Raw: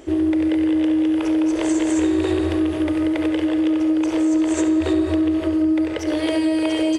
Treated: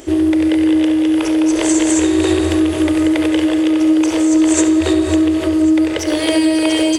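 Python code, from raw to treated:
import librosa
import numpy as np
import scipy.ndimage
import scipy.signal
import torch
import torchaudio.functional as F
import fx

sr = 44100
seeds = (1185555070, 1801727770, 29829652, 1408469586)

y = fx.high_shelf(x, sr, hz=3900.0, db=10.5)
y = fx.echo_feedback(y, sr, ms=545, feedback_pct=59, wet_db=-16.0)
y = y * 10.0 ** (5.0 / 20.0)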